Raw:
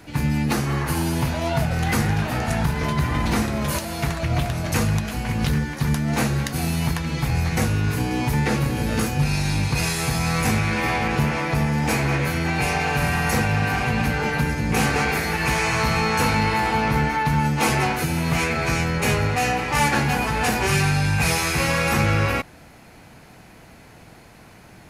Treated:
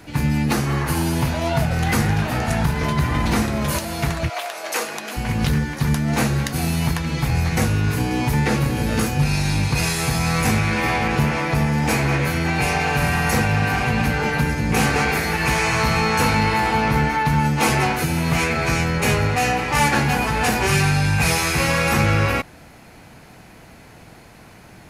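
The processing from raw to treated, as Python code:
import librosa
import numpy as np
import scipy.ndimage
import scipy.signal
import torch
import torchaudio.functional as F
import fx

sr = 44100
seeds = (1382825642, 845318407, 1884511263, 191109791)

y = fx.highpass(x, sr, hz=fx.line((4.28, 630.0), (5.16, 270.0)), slope=24, at=(4.28, 5.16), fade=0.02)
y = y * librosa.db_to_amplitude(2.0)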